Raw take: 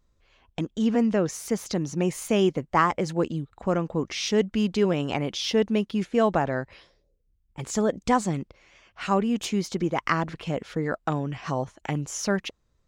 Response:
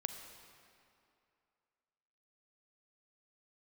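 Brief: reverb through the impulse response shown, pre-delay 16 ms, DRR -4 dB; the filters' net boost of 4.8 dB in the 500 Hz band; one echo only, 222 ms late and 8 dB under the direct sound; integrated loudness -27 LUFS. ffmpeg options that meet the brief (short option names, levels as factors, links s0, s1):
-filter_complex "[0:a]equalizer=f=500:t=o:g=6,aecho=1:1:222:0.398,asplit=2[s0][s1];[1:a]atrim=start_sample=2205,adelay=16[s2];[s1][s2]afir=irnorm=-1:irlink=0,volume=1.58[s3];[s0][s3]amix=inputs=2:normalize=0,volume=0.355"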